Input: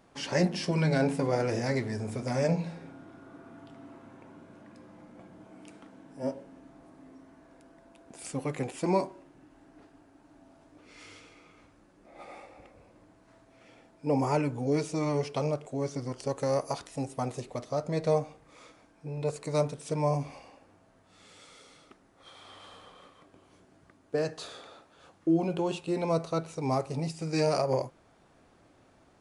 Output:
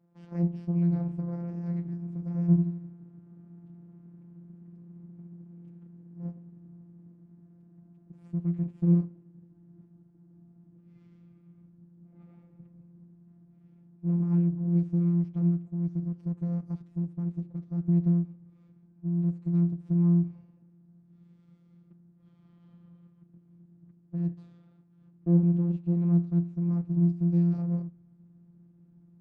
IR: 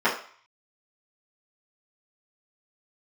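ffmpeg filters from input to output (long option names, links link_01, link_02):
-af "afftfilt=real='hypot(re,im)*cos(PI*b)':imag='0':win_size=1024:overlap=0.75,asubboost=boost=8.5:cutoff=180,aeval=exprs='max(val(0),0)':channel_layout=same,bandpass=frequency=170:width_type=q:width=1.6:csg=0,volume=4.5dB"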